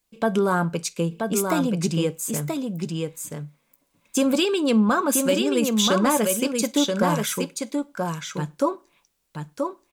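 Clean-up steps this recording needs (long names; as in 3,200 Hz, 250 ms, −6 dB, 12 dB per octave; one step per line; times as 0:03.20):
clipped peaks rebuilt −11.5 dBFS
echo removal 980 ms −4.5 dB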